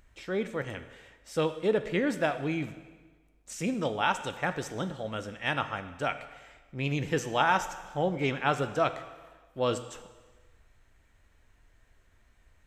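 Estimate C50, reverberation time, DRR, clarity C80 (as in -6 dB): 12.0 dB, 1.4 s, 10.0 dB, 13.5 dB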